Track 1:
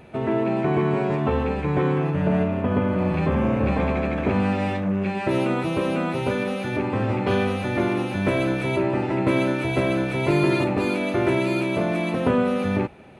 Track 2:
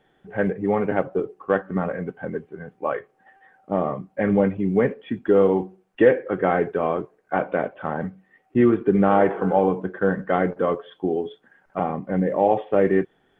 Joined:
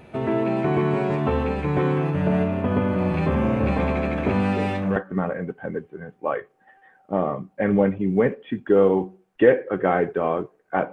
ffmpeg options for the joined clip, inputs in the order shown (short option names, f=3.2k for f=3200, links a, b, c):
-filter_complex "[1:a]asplit=2[a][b];[0:a]apad=whole_dur=10.92,atrim=end=10.92,atrim=end=4.962[c];[b]atrim=start=1.548:end=7.51[d];[a]atrim=start=1.14:end=1.55,asetpts=PTS-STARTPTS,volume=-7.5dB,afade=t=in:d=0.004:c=hsin,afade=t=out:st=0.406:d=0.004:c=hsin,adelay=4550[e];[c][d]acrossfade=d=0.004:c1=hsin:c2=hsin[f];[f][e]amix=inputs=2:normalize=0"